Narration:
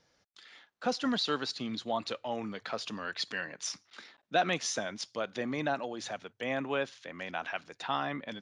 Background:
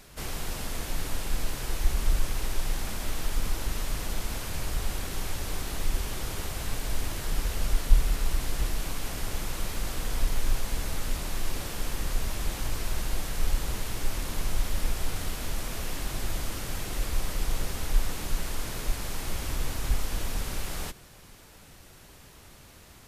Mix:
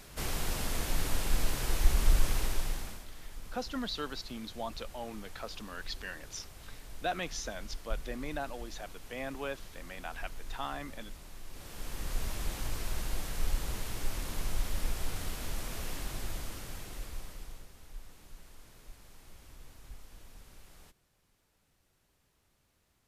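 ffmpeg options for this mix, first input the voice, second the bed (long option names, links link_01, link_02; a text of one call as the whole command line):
ffmpeg -i stem1.wav -i stem2.wav -filter_complex "[0:a]adelay=2700,volume=-6dB[link_01];[1:a]volume=12dB,afade=type=out:start_time=2.33:duration=0.73:silence=0.141254,afade=type=in:start_time=11.49:duration=0.74:silence=0.251189,afade=type=out:start_time=15.9:duration=1.78:silence=0.141254[link_02];[link_01][link_02]amix=inputs=2:normalize=0" out.wav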